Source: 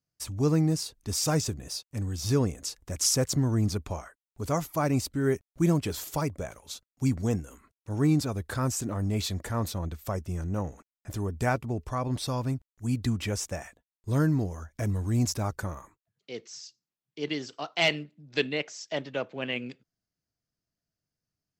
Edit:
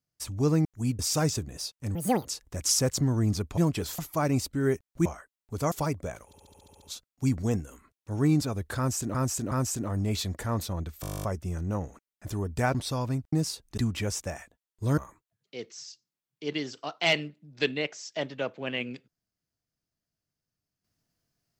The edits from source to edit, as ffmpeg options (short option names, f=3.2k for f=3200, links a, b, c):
-filter_complex "[0:a]asplit=34[a][b][c][d][e][f][g][h][i][j][k][l][m][n][o][p][q][r][s][t][u][v][w][x][y][z][aa][ab][ac][ad][ae][af][ag][ah];[a]atrim=end=0.652[ai];[b]atrim=start=12.688:end=13.032[aj];[c]atrim=start=1.098:end=2.064[ak];[d]atrim=start=2.06:end=2.61,asetpts=PTS-STARTPTS,asetrate=79380,aresample=44100[al];[e]atrim=start=2.606:end=3.932[am];[f]atrim=start=5.658:end=6.072[an];[g]atrim=start=4.588:end=5.662[ao];[h]atrim=start=3.928:end=4.592[ap];[i]atrim=start=6.068:end=6.682[aq];[j]atrim=start=6.608:end=6.682[ar];[k]atrim=start=6.608:end=6.682[as];[l]atrim=start=6.608:end=6.682[at];[m]atrim=start=6.608:end=6.682[au];[n]atrim=start=6.608:end=6.682[av];[o]atrim=start=6.608:end=6.682[aw];[p]atrim=start=6.608:end=6.682[ax];[q]atrim=start=6.608:end=8.942[ay];[r]atrim=start=8.568:end=8.942[az];[s]atrim=start=8.568:end=10.092[ba];[t]atrim=start=10.068:end=10.092[bb];[u]atrim=start=10.068:end=10.092[bc];[v]atrim=start=10.068:end=10.092[bd];[w]atrim=start=10.068:end=10.092[be];[x]atrim=start=10.068:end=10.092[bf];[y]atrim=start=10.068:end=10.092[bg];[z]atrim=start=10.068:end=10.092[bh];[aa]atrim=start=10.068:end=10.092[bi];[ab]atrim=start=10.068:end=10.092[bj];[ac]atrim=start=10.068:end=10.092[bk];[ad]atrim=start=10.068:end=11.582[bl];[ae]atrim=start=12.108:end=12.692[bm];[af]atrim=start=0.648:end=1.102[bn];[ag]atrim=start=13.028:end=14.232[bo];[ah]atrim=start=15.728[bp];[ai][aj]acrossfade=d=0.004:c1=hsin:c2=hsin[bq];[bq][ak]acrossfade=d=0.004:c1=hsin:c2=hsin[br];[br][al]acrossfade=d=0.004:c1=hsin:c2=hsin[bs];[bs][am]acrossfade=d=0.004:c1=hsin:c2=hsin[bt];[bt][an]acrossfade=d=0.004:c1=hsin:c2=hsin[bu];[bu][ao]acrossfade=d=0.004:c1=hsin:c2=hsin[bv];[bv][ap]acrossfade=d=0.004:c1=hsin:c2=hsin[bw];[bw][aq]acrossfade=d=0.004:c1=hsin:c2=hsin[bx];[bx][ar]acrossfade=d=0.004:c1=hsin:c2=hsin[by];[by][as]acrossfade=d=0.004:c1=hsin:c2=hsin[bz];[bz][at]acrossfade=d=0.004:c1=hsin:c2=hsin[ca];[ca][au]acrossfade=d=0.004:c1=hsin:c2=hsin[cb];[cb][av]acrossfade=d=0.004:c1=hsin:c2=hsin[cc];[cc][aw]acrossfade=d=0.004:c1=hsin:c2=hsin[cd];[cd][ax]acrossfade=d=0.004:c1=hsin:c2=hsin[ce];[ce][ay]acrossfade=d=0.004:c1=hsin:c2=hsin[cf];[cf][az]acrossfade=d=0.004:c1=hsin:c2=hsin[cg];[cg][ba]acrossfade=d=0.004:c1=hsin:c2=hsin[ch];[ch][bb]acrossfade=d=0.004:c1=hsin:c2=hsin[ci];[ci][bc]acrossfade=d=0.004:c1=hsin:c2=hsin[cj];[cj][bd]acrossfade=d=0.004:c1=hsin:c2=hsin[ck];[ck][be]acrossfade=d=0.004:c1=hsin:c2=hsin[cl];[cl][bf]acrossfade=d=0.004:c1=hsin:c2=hsin[cm];[cm][bg]acrossfade=d=0.004:c1=hsin:c2=hsin[cn];[cn][bh]acrossfade=d=0.004:c1=hsin:c2=hsin[co];[co][bi]acrossfade=d=0.004:c1=hsin:c2=hsin[cp];[cp][bj]acrossfade=d=0.004:c1=hsin:c2=hsin[cq];[cq][bk]acrossfade=d=0.004:c1=hsin:c2=hsin[cr];[cr][bl]acrossfade=d=0.004:c1=hsin:c2=hsin[cs];[cs][bm]acrossfade=d=0.004:c1=hsin:c2=hsin[ct];[ct][bn]acrossfade=d=0.004:c1=hsin:c2=hsin[cu];[cu][bo]acrossfade=d=0.004:c1=hsin:c2=hsin[cv];[cv][bp]acrossfade=d=0.004:c1=hsin:c2=hsin"